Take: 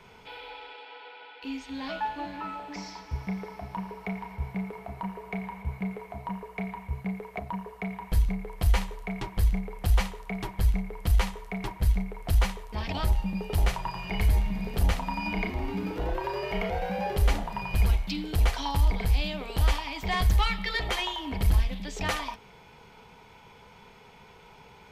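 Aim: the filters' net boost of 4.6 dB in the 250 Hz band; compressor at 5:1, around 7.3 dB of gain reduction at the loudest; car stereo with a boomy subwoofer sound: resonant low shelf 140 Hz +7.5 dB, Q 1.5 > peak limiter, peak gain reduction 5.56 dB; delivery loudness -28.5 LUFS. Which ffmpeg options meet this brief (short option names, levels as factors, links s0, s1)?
-af "equalizer=f=250:t=o:g=9,acompressor=threshold=0.0562:ratio=5,lowshelf=f=140:t=q:w=1.5:g=7.5,volume=1.12,alimiter=limit=0.178:level=0:latency=1"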